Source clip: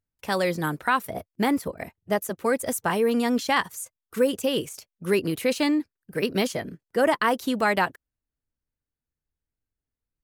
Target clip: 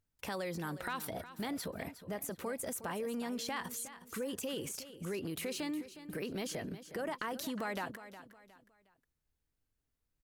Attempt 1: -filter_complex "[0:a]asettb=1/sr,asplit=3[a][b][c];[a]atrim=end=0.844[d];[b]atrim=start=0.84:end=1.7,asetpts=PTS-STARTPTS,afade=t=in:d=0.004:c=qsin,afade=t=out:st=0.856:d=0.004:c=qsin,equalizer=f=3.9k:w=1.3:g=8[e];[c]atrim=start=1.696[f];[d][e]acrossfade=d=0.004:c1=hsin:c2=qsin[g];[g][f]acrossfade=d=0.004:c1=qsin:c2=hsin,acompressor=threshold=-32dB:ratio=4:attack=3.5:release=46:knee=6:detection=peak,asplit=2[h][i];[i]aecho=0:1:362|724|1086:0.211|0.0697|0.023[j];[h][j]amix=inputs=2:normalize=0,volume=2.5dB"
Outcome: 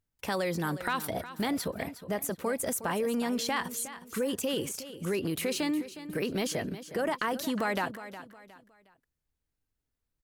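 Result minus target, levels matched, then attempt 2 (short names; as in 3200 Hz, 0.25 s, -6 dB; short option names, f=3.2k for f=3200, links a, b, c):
compressor: peak gain reduction -8 dB
-filter_complex "[0:a]asettb=1/sr,asplit=3[a][b][c];[a]atrim=end=0.844[d];[b]atrim=start=0.84:end=1.7,asetpts=PTS-STARTPTS,afade=t=in:d=0.004:c=qsin,afade=t=out:st=0.856:d=0.004:c=qsin,equalizer=f=3.9k:w=1.3:g=8[e];[c]atrim=start=1.696[f];[d][e]acrossfade=d=0.004:c1=hsin:c2=qsin[g];[g][f]acrossfade=d=0.004:c1=qsin:c2=hsin,acompressor=threshold=-43dB:ratio=4:attack=3.5:release=46:knee=6:detection=peak,asplit=2[h][i];[i]aecho=0:1:362|724|1086:0.211|0.0697|0.023[j];[h][j]amix=inputs=2:normalize=0,volume=2.5dB"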